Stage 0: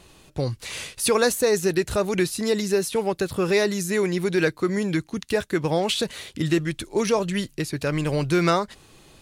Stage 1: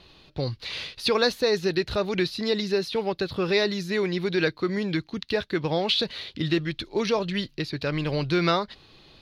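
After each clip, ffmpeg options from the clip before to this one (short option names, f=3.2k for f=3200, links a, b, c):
-af "highshelf=f=5.9k:t=q:w=3:g=-12.5,volume=-3dB"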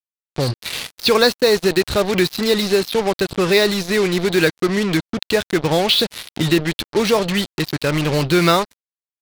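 -af "acrusher=bits=4:mix=0:aa=0.5,volume=8dB"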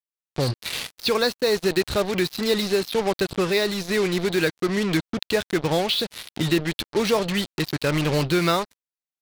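-af "dynaudnorm=f=100:g=3:m=5dB,volume=-8dB"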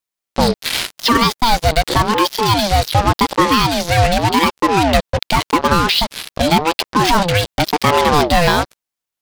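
-af "alimiter=level_in=12.5dB:limit=-1dB:release=50:level=0:latency=1,aeval=exprs='val(0)*sin(2*PI*510*n/s+510*0.4/0.88*sin(2*PI*0.88*n/s))':c=same"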